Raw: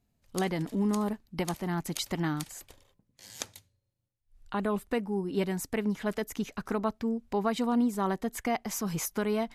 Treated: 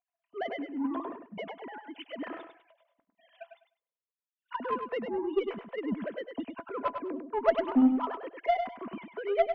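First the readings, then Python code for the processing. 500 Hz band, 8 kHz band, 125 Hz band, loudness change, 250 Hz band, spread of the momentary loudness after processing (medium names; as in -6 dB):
+1.0 dB, under -35 dB, -17.5 dB, -0.5 dB, -2.0 dB, 17 LU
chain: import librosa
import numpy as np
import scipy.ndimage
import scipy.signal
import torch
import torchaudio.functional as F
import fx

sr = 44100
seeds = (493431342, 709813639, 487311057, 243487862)

p1 = fx.sine_speech(x, sr)
p2 = fx.small_body(p1, sr, hz=(670.0, 1000.0), ring_ms=95, db=13)
p3 = fx.cheby_harmonics(p2, sr, harmonics=(3, 4, 6, 7), levels_db=(-19, -28, -36, -33), full_scale_db=-11.5)
y = p3 + fx.echo_feedback(p3, sr, ms=101, feedback_pct=20, wet_db=-7, dry=0)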